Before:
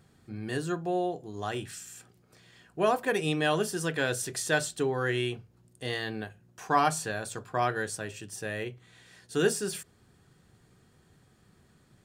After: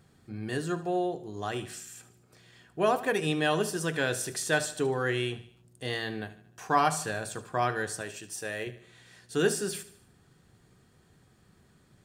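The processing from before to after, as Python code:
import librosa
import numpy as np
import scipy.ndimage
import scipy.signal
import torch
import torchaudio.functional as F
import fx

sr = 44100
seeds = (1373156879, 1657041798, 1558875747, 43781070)

y = fx.bass_treble(x, sr, bass_db=-8, treble_db=3, at=(8.01, 8.67))
y = fx.echo_feedback(y, sr, ms=75, feedback_pct=48, wet_db=-15)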